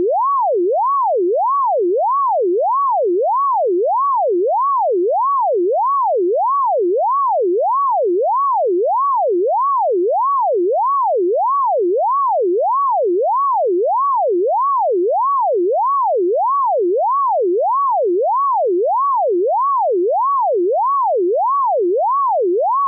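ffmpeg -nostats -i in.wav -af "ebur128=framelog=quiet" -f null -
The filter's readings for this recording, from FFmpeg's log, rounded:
Integrated loudness:
  I:         -15.9 LUFS
  Threshold: -25.9 LUFS
Loudness range:
  LRA:         0.0 LU
  Threshold: -35.9 LUFS
  LRA low:   -15.9 LUFS
  LRA high:  -15.9 LUFS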